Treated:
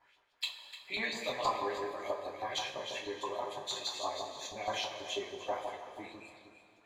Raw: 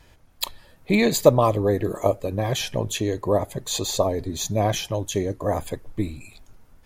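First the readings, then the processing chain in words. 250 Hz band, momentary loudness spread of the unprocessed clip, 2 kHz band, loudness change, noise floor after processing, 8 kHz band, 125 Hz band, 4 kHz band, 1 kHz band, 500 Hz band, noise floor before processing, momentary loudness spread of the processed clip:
-23.0 dB, 14 LU, -7.0 dB, -14.0 dB, -67 dBFS, -16.5 dB, -32.0 dB, -7.5 dB, -8.5 dB, -17.0 dB, -54 dBFS, 13 LU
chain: echo whose repeats swap between lows and highs 150 ms, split 1 kHz, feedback 52%, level -4 dB; LFO band-pass saw up 6.2 Hz 840–4500 Hz; two-slope reverb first 0.25 s, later 2.8 s, from -18 dB, DRR -4 dB; trim -6.5 dB

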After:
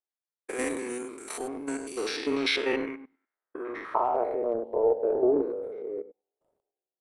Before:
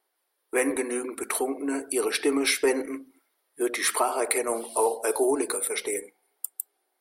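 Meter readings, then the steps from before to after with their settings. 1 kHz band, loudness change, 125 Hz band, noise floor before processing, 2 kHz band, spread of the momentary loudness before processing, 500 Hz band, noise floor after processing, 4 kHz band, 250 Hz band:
-2.0 dB, -2.5 dB, no reading, -77 dBFS, -4.5 dB, 11 LU, -1.0 dB, under -85 dBFS, -2.0 dB, -3.0 dB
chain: spectrogram pixelated in time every 100 ms; power-law waveshaper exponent 1.4; low-pass sweep 7.3 kHz -> 540 Hz, 1.79–4.57 s; transient shaper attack +2 dB, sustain +7 dB

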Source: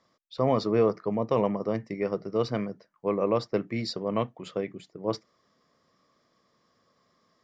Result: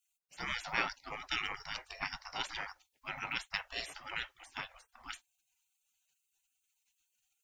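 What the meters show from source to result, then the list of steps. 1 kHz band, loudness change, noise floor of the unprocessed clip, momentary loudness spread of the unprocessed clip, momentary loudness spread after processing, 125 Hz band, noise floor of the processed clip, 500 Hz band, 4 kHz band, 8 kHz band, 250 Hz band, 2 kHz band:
-8.0 dB, -10.5 dB, -71 dBFS, 10 LU, 13 LU, -22.0 dB, -83 dBFS, -26.5 dB, +1.0 dB, no reading, -25.0 dB, +7.0 dB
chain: spectral gate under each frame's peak -30 dB weak; trim +13 dB

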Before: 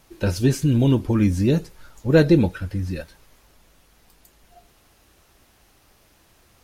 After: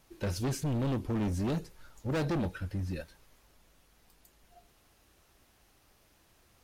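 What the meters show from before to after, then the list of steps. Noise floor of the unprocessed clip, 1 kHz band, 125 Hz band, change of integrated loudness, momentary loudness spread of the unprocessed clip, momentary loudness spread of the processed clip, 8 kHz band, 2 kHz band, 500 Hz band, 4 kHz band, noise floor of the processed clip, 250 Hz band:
-58 dBFS, -5.5 dB, -12.5 dB, -13.5 dB, 13 LU, 11 LU, no reading, -12.5 dB, -14.5 dB, -10.5 dB, -66 dBFS, -14.0 dB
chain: overload inside the chain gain 20.5 dB; trim -8 dB

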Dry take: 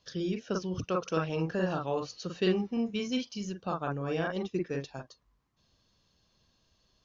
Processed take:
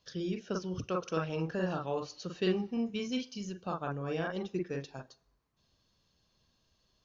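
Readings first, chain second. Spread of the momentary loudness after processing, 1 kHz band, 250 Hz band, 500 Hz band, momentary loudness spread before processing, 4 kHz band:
8 LU, -3.0 dB, -3.0 dB, -3.0 dB, 8 LU, -3.0 dB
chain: two-slope reverb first 0.75 s, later 2.6 s, from -26 dB, DRR 19.5 dB; trim -3 dB

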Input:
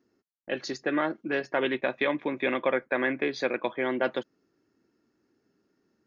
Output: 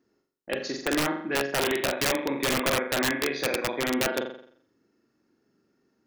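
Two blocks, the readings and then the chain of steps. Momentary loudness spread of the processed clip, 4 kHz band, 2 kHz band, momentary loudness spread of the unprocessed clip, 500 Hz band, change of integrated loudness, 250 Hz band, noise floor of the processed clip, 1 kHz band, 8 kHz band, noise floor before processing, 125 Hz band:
7 LU, +9.5 dB, +1.5 dB, 7 LU, 0.0 dB, +2.0 dB, +1.5 dB, -74 dBFS, +2.0 dB, no reading, -76 dBFS, +8.0 dB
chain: flutter echo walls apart 7.4 m, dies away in 0.59 s; integer overflow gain 17.5 dB

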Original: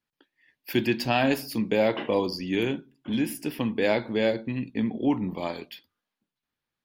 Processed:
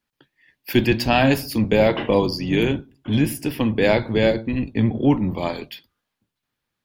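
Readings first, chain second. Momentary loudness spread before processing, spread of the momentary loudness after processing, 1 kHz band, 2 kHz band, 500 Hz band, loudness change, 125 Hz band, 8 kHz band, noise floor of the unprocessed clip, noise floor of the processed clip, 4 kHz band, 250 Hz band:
9 LU, 7 LU, +6.0 dB, +6.0 dB, +6.0 dB, +6.5 dB, +11.5 dB, +6.0 dB, under -85 dBFS, -81 dBFS, +6.0 dB, +6.5 dB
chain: octave divider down 1 oct, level -3 dB; trim +6 dB

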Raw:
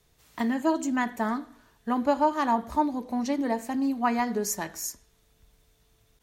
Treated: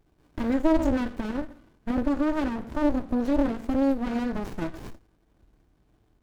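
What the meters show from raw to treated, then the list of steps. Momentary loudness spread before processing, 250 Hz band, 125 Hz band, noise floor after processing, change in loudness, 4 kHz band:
9 LU, +2.5 dB, no reading, -66 dBFS, +0.5 dB, -3.5 dB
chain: peak limiter -21.5 dBFS, peak gain reduction 10 dB; small resonant body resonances 320/1500 Hz, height 16 dB, ringing for 45 ms; sliding maximum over 65 samples

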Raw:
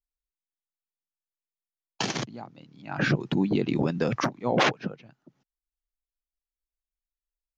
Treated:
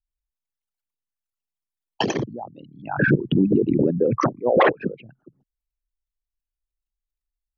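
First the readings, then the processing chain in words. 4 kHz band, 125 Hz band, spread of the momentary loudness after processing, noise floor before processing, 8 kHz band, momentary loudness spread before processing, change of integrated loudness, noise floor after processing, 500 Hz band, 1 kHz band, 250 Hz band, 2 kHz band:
-2.0 dB, +4.5 dB, 14 LU, under -85 dBFS, no reading, 14 LU, +6.0 dB, under -85 dBFS, +8.5 dB, +5.5 dB, +6.0 dB, +4.5 dB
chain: resonances exaggerated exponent 3; trim +6.5 dB

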